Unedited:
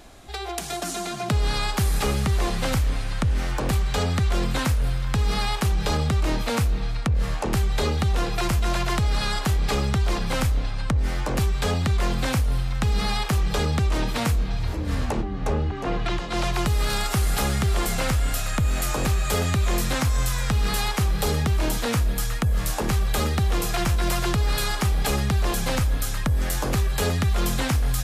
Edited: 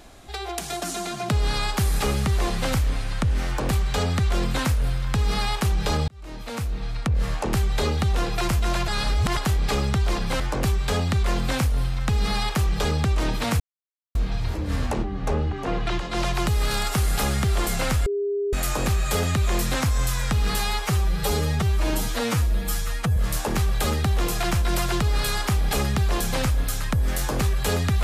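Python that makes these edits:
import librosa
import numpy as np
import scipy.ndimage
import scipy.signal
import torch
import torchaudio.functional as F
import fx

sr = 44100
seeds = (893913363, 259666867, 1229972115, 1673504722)

y = fx.edit(x, sr, fx.fade_in_span(start_s=6.08, length_s=1.08),
    fx.reverse_span(start_s=8.88, length_s=0.49),
    fx.cut(start_s=10.4, length_s=0.74),
    fx.insert_silence(at_s=14.34, length_s=0.55),
    fx.bleep(start_s=18.25, length_s=0.47, hz=404.0, db=-22.0),
    fx.stretch_span(start_s=20.79, length_s=1.71, factor=1.5), tone=tone)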